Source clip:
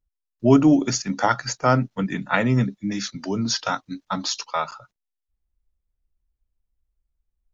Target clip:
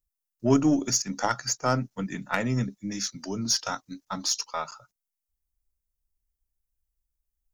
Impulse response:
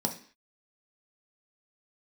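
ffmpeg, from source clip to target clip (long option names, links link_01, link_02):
-af "aeval=exprs='0.794*(cos(1*acos(clip(val(0)/0.794,-1,1)))-cos(1*PI/2))+0.0562*(cos(3*acos(clip(val(0)/0.794,-1,1)))-cos(3*PI/2))+0.0112*(cos(8*acos(clip(val(0)/0.794,-1,1)))-cos(8*PI/2))':channel_layout=same,aexciter=amount=2.2:drive=8.9:freq=5100,volume=-5dB"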